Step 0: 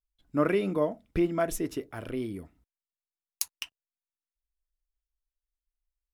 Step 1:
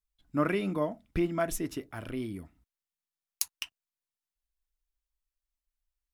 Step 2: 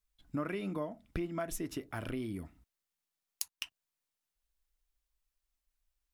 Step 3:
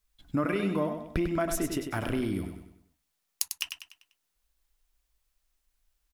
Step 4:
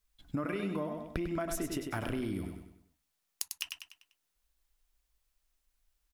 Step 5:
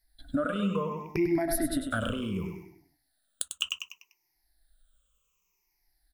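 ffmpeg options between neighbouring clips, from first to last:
-af "equalizer=f=460:w=1.9:g=-7"
-af "acompressor=threshold=0.0112:ratio=4,volume=1.5"
-af "aecho=1:1:98|196|294|392|490:0.447|0.188|0.0788|0.0331|0.0139,volume=2.37"
-af "acompressor=threshold=0.0355:ratio=6,volume=0.794"
-af "afftfilt=real='re*pow(10,23/40*sin(2*PI*(0.77*log(max(b,1)*sr/1024/100)/log(2)-(-0.67)*(pts-256)/sr)))':imag='im*pow(10,23/40*sin(2*PI*(0.77*log(max(b,1)*sr/1024/100)/log(2)-(-0.67)*(pts-256)/sr)))':win_size=1024:overlap=0.75"

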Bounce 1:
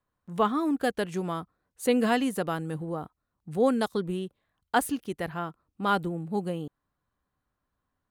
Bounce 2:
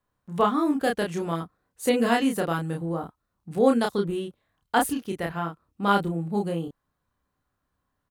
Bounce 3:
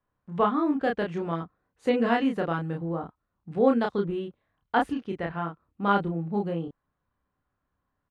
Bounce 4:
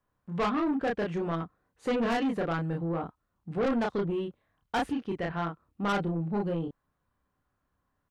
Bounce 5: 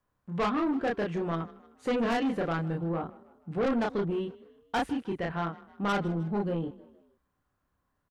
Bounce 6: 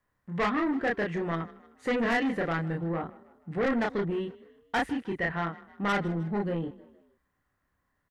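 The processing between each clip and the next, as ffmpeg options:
-filter_complex "[0:a]asplit=2[s0][s1];[s1]adelay=30,volume=0.708[s2];[s0][s2]amix=inputs=2:normalize=0,volume=1.19"
-af "lowpass=2700,volume=0.841"
-af "asoftclip=type=tanh:threshold=0.0531,volume=1.19"
-filter_complex "[0:a]asplit=4[s0][s1][s2][s3];[s1]adelay=155,afreqshift=31,volume=0.1[s4];[s2]adelay=310,afreqshift=62,volume=0.0462[s5];[s3]adelay=465,afreqshift=93,volume=0.0211[s6];[s0][s4][s5][s6]amix=inputs=4:normalize=0"
-af "equalizer=f=1900:w=4.3:g=11.5"

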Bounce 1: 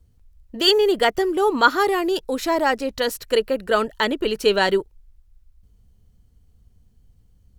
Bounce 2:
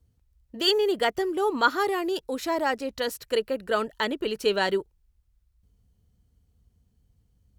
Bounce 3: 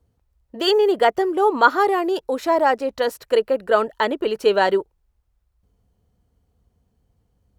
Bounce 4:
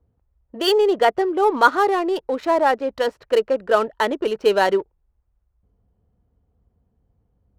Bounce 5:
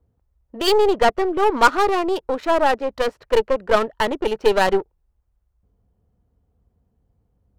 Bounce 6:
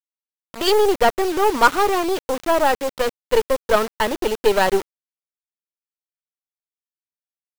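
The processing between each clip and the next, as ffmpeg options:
-af "highpass=46,volume=0.501"
-af "equalizer=f=720:t=o:w=2.6:g=11.5,volume=0.841"
-af "adynamicsmooth=sensitivity=6:basefreq=1800"
-af "aeval=exprs='0.891*(cos(1*acos(clip(val(0)/0.891,-1,1)))-cos(1*PI/2))+0.0794*(cos(8*acos(clip(val(0)/0.891,-1,1)))-cos(8*PI/2))':c=same"
-af "acrusher=bits=4:mix=0:aa=0.000001"

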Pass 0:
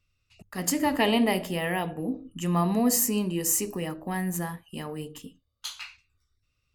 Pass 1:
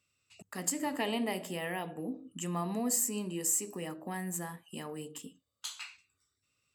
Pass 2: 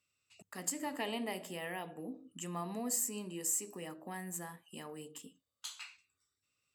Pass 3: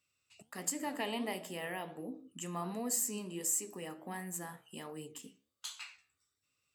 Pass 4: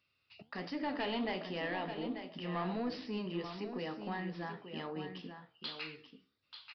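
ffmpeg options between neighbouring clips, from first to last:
-af "highpass=170,equalizer=f=7800:t=o:w=0.21:g=13.5,acompressor=threshold=0.00447:ratio=1.5"
-af "lowshelf=f=260:g=-4.5,volume=0.631"
-af "flanger=delay=6.2:depth=9.2:regen=80:speed=1.4:shape=sinusoidal,volume=1.88"
-af "asoftclip=type=tanh:threshold=0.0188,aecho=1:1:887:0.355,aresample=11025,aresample=44100,volume=1.68"

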